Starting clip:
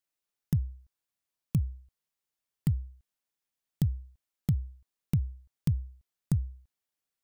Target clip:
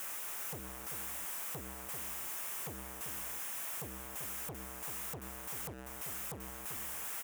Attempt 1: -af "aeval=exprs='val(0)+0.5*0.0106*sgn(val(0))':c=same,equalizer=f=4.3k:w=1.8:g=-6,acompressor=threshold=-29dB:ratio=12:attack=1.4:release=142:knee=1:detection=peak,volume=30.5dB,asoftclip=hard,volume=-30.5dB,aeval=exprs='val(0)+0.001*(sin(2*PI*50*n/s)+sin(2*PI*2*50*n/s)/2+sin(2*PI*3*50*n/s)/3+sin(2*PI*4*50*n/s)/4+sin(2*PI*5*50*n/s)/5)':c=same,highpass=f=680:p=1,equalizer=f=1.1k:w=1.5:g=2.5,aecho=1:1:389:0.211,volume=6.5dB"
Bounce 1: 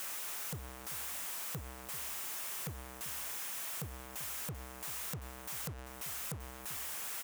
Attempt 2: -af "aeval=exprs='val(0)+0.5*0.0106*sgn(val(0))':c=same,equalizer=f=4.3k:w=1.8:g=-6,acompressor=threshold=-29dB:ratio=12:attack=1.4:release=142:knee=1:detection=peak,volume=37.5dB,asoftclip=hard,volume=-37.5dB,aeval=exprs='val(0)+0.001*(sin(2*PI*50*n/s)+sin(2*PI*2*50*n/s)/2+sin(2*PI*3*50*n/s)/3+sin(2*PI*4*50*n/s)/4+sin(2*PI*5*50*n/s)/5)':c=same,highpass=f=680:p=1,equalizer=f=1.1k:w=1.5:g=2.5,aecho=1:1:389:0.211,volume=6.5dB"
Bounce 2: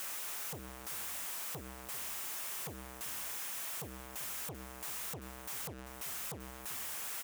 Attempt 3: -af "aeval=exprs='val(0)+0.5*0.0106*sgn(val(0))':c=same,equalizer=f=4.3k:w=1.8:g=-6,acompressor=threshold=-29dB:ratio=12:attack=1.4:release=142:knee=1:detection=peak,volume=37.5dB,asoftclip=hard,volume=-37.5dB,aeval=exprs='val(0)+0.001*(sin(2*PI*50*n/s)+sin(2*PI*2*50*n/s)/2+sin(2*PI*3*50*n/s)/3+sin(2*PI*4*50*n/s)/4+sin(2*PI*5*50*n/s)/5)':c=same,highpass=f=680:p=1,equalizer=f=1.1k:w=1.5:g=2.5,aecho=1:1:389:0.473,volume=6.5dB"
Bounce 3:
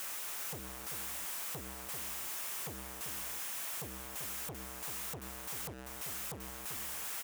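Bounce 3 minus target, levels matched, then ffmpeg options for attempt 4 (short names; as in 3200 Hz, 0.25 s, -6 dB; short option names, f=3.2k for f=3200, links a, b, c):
4000 Hz band +4.0 dB
-af "aeval=exprs='val(0)+0.5*0.0106*sgn(val(0))':c=same,equalizer=f=4.3k:w=1.8:g=-14,acompressor=threshold=-29dB:ratio=12:attack=1.4:release=142:knee=1:detection=peak,volume=37.5dB,asoftclip=hard,volume=-37.5dB,aeval=exprs='val(0)+0.001*(sin(2*PI*50*n/s)+sin(2*PI*2*50*n/s)/2+sin(2*PI*3*50*n/s)/3+sin(2*PI*4*50*n/s)/4+sin(2*PI*5*50*n/s)/5)':c=same,highpass=f=680:p=1,equalizer=f=1.1k:w=1.5:g=2.5,aecho=1:1:389:0.473,volume=6.5dB"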